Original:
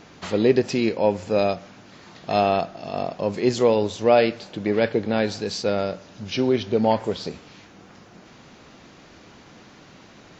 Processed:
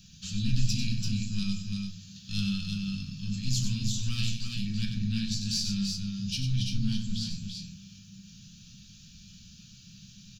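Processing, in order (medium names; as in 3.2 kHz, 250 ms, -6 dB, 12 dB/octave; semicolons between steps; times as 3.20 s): single-diode clipper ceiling -18 dBFS; Chebyshev band-stop 190–2300 Hz, order 3; treble shelf 5.3 kHz +5.5 dB; static phaser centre 860 Hz, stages 4; crackle 140 per s -66 dBFS; multi-tap echo 95/338/368 ms -8/-5/-17 dB; on a send at -2 dB: reverberation RT60 0.30 s, pre-delay 4 ms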